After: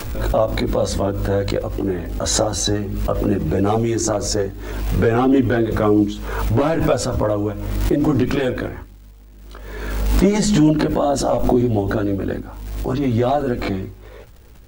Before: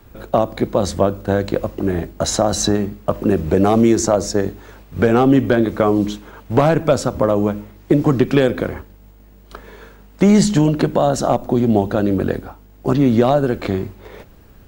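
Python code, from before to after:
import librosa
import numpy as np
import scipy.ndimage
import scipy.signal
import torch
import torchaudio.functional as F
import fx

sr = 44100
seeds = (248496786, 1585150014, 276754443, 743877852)

y = fx.chorus_voices(x, sr, voices=6, hz=0.39, base_ms=18, depth_ms=2.1, mix_pct=55)
y = fx.dmg_crackle(y, sr, seeds[0], per_s=430.0, level_db=-44.0)
y = fx.pre_swell(y, sr, db_per_s=38.0)
y = y * 10.0 ** (-1.0 / 20.0)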